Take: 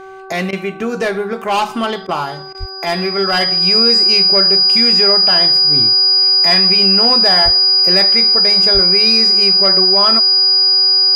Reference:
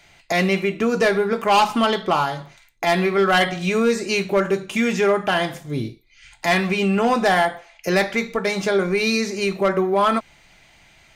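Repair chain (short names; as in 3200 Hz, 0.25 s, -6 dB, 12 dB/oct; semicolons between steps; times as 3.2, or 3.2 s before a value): de-hum 382.9 Hz, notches 4; notch 4900 Hz, Q 30; de-plosive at 2.59/7.44/8.73; interpolate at 0.51/2.07/2.53, 16 ms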